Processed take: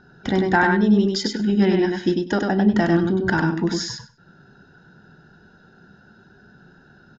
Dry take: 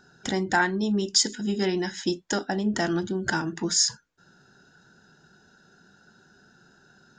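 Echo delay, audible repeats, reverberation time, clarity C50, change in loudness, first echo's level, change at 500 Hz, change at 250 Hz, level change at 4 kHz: 98 ms, 2, no reverb audible, no reverb audible, +5.5 dB, −3.5 dB, +7.5 dB, +9.0 dB, −3.0 dB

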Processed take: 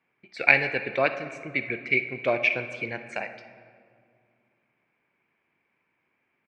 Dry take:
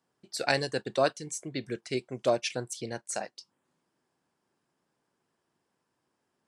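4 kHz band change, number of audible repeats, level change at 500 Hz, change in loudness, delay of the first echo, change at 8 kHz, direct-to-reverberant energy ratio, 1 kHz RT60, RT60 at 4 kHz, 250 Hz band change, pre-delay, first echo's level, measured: −3.0 dB, 1, +1.0 dB, +6.5 dB, 62 ms, below −15 dB, 9.5 dB, 2.0 s, 1.1 s, +0.5 dB, 31 ms, −17.5 dB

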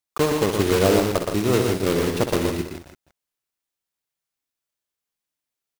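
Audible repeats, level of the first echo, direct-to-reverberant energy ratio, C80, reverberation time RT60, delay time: 4, −9.0 dB, no reverb audible, no reverb audible, no reverb audible, 64 ms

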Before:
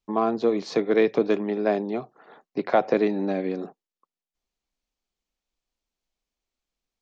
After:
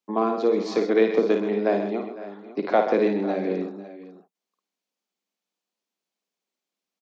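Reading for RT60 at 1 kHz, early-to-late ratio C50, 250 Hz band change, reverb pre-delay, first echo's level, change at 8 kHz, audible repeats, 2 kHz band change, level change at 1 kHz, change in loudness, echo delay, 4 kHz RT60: no reverb audible, no reverb audible, +0.5 dB, no reverb audible, −6.0 dB, can't be measured, 4, +0.5 dB, +1.0 dB, +1.0 dB, 54 ms, no reverb audible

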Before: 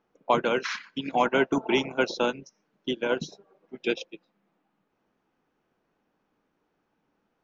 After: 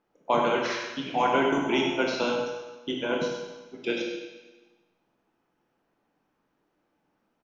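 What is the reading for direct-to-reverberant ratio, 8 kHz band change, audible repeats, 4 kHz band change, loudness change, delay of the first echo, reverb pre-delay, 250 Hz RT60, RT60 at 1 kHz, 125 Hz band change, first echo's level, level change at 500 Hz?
−1.0 dB, can't be measured, 1, +1.0 dB, 0.0 dB, 97 ms, 18 ms, 1.2 s, 1.2 s, 0.0 dB, −9.0 dB, 0.0 dB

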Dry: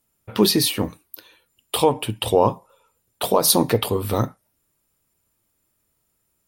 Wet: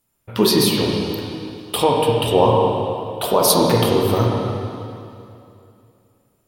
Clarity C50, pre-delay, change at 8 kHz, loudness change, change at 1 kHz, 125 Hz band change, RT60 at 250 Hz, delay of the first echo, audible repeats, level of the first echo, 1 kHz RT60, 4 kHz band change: −0.5 dB, 16 ms, 0.0 dB, +2.5 dB, +4.5 dB, +6.0 dB, 2.8 s, no echo audible, no echo audible, no echo audible, 2.6 s, +2.5 dB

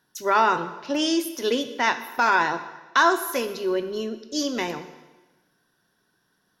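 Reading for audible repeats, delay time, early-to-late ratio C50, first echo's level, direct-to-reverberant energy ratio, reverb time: no echo audible, no echo audible, 12.0 dB, no echo audible, 9.5 dB, 1.2 s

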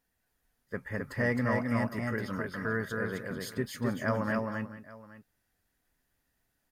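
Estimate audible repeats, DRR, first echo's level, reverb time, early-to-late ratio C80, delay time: 3, no reverb audible, −3.0 dB, no reverb audible, no reverb audible, 262 ms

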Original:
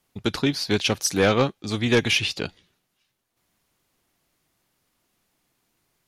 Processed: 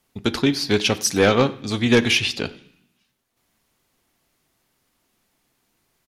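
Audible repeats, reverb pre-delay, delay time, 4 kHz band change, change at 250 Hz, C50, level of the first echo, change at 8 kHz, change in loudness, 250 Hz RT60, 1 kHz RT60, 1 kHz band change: 1, 3 ms, 93 ms, +2.5 dB, +4.0 dB, 17.5 dB, −23.0 dB, +2.5 dB, +3.0 dB, 0.95 s, 0.65 s, +2.5 dB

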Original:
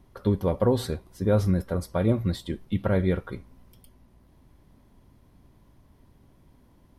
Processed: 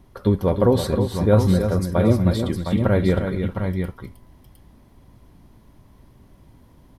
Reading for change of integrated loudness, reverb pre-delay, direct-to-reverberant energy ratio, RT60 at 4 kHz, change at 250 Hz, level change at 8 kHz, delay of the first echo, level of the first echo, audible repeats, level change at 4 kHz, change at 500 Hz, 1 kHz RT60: +6.0 dB, no reverb audible, no reverb audible, no reverb audible, +7.0 dB, +6.5 dB, 233 ms, −16.0 dB, 3, +6.5 dB, +6.5 dB, no reverb audible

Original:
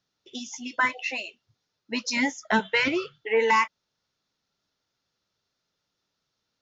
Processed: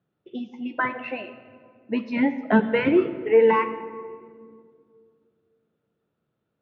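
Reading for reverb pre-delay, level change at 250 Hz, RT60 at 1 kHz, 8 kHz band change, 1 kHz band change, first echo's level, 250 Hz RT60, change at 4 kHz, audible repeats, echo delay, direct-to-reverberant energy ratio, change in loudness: 6 ms, +8.0 dB, 1.8 s, can't be measured, −0.5 dB, no echo audible, 2.9 s, −9.5 dB, no echo audible, no echo audible, 10.0 dB, +3.0 dB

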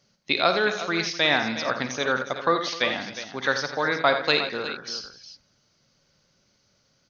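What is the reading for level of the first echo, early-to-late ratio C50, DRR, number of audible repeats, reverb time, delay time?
−12.0 dB, no reverb audible, no reverb audible, 5, no reverb audible, 54 ms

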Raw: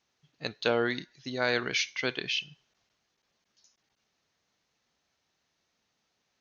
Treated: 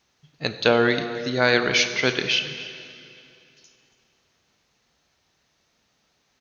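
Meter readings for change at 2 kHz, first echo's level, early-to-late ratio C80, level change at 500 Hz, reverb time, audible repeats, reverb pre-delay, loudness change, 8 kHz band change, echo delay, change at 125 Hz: +9.0 dB, −18.0 dB, 10.0 dB, +9.5 dB, 2.7 s, 1, 6 ms, +9.0 dB, can't be measured, 281 ms, +11.0 dB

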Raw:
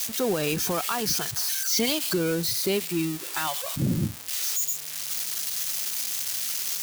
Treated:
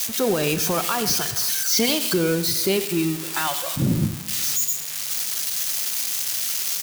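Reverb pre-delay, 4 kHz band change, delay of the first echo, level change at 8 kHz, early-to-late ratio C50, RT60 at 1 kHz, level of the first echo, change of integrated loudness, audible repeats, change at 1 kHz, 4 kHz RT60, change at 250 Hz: 5 ms, +4.5 dB, 93 ms, +4.5 dB, 11.5 dB, 1.7 s, −15.5 dB, +4.5 dB, 1, +4.5 dB, 1.6 s, +4.5 dB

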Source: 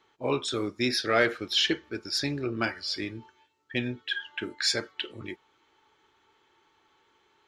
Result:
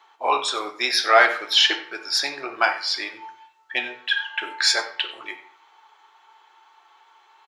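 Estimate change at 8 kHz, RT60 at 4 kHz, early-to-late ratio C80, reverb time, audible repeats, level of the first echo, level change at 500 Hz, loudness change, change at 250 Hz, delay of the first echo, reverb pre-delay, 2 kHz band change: +7.5 dB, 0.40 s, 14.0 dB, 0.55 s, 1, −17.5 dB, +3.5 dB, +7.5 dB, −8.0 dB, 93 ms, 3 ms, +9.5 dB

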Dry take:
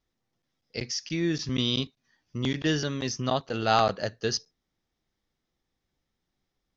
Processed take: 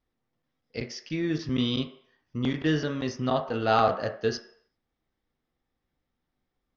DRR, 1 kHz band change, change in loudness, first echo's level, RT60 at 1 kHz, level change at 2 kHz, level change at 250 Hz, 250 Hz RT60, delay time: 5.0 dB, +0.5 dB, 0.0 dB, no echo audible, 0.65 s, −0.5 dB, +1.5 dB, 0.45 s, no echo audible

